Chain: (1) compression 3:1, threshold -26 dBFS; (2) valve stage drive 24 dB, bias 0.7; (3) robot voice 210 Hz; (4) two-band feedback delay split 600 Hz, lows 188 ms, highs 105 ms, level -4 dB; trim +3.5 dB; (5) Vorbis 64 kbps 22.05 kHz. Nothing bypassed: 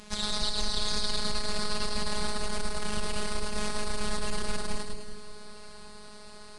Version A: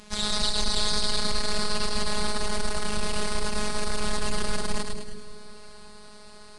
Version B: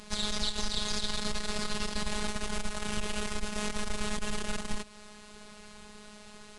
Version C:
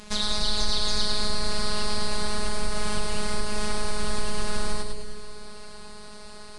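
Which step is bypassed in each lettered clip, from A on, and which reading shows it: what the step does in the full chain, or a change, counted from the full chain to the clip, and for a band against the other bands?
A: 1, mean gain reduction 4.5 dB; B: 4, 250 Hz band +3.0 dB; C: 2, crest factor change -2.5 dB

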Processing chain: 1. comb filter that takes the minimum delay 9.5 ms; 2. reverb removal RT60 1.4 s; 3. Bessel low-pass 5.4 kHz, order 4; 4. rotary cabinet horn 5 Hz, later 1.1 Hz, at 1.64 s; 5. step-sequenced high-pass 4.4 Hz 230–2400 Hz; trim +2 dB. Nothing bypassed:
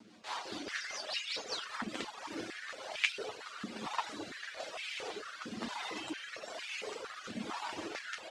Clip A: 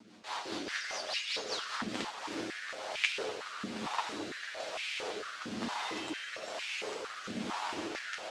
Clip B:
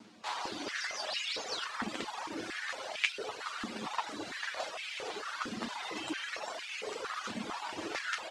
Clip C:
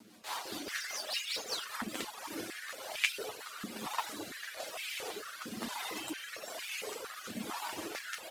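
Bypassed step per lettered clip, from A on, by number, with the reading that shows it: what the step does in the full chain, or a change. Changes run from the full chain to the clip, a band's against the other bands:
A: 2, crest factor change -2.5 dB; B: 4, crest factor change -2.5 dB; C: 3, 8 kHz band +6.0 dB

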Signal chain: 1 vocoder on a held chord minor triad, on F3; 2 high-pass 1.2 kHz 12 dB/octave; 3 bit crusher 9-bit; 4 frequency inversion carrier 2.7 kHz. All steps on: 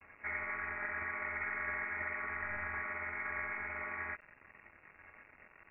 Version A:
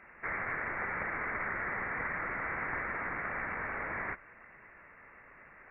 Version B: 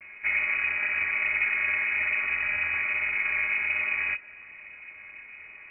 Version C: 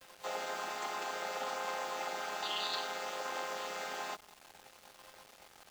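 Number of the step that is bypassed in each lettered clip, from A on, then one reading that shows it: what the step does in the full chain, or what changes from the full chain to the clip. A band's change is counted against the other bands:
1, 2 kHz band -3.5 dB; 2, momentary loudness spread change -2 LU; 4, 125 Hz band -13.5 dB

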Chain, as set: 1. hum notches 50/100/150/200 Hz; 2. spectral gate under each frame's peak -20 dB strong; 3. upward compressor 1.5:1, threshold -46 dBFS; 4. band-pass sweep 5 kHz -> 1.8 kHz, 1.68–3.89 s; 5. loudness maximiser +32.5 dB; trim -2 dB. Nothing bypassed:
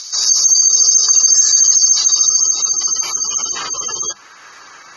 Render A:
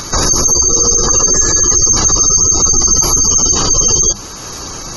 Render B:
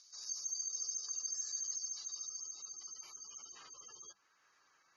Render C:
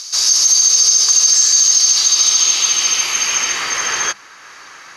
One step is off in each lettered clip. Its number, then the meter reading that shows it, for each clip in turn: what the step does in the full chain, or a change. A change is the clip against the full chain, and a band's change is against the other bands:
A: 4, 1 kHz band +8.0 dB; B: 5, crest factor change +3.5 dB; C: 2, 2 kHz band +9.5 dB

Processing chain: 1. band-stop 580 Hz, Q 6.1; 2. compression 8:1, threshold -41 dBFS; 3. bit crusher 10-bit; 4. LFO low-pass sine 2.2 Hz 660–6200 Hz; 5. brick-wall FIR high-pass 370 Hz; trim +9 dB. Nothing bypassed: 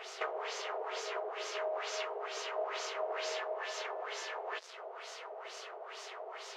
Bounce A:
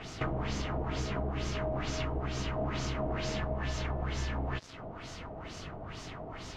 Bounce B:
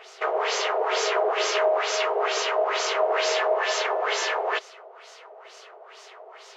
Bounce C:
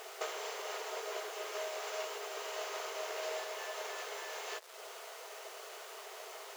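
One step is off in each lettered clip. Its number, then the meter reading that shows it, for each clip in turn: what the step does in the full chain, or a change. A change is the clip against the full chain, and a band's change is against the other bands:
5, crest factor change -2.0 dB; 2, mean gain reduction 10.0 dB; 4, 8 kHz band +4.5 dB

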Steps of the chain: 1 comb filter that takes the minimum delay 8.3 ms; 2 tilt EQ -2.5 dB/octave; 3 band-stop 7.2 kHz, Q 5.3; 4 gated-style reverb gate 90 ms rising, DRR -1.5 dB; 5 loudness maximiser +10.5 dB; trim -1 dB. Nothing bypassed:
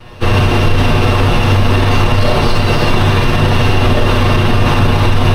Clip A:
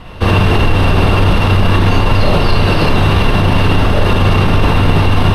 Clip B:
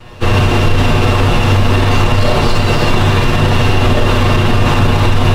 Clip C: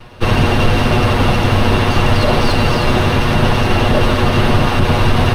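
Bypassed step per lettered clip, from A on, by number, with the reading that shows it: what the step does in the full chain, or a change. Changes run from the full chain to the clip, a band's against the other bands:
1, 8 kHz band -3.5 dB; 3, 8 kHz band +2.0 dB; 4, crest factor change +2.5 dB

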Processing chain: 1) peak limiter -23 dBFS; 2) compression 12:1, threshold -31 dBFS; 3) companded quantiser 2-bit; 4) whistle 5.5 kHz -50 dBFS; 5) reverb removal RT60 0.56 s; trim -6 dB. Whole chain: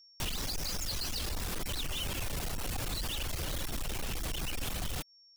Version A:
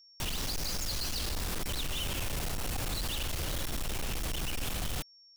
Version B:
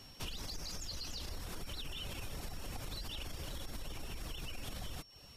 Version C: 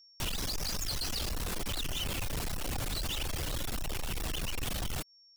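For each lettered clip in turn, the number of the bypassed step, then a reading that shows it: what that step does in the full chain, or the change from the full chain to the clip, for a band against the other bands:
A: 5, crest factor change -3.5 dB; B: 3, distortion -8 dB; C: 2, mean gain reduction 3.5 dB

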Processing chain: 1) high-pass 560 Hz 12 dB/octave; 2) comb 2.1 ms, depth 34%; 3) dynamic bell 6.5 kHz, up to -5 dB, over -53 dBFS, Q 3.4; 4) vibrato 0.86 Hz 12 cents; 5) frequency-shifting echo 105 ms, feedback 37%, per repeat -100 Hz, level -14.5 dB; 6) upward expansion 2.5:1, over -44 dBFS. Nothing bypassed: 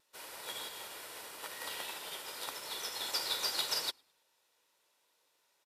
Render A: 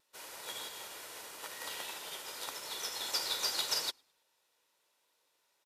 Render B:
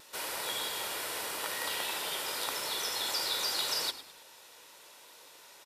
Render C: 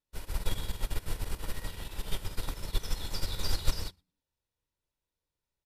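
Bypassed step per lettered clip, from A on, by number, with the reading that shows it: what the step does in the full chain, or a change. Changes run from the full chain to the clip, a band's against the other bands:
3, 8 kHz band +2.5 dB; 6, crest factor change -4.5 dB; 1, 250 Hz band +14.0 dB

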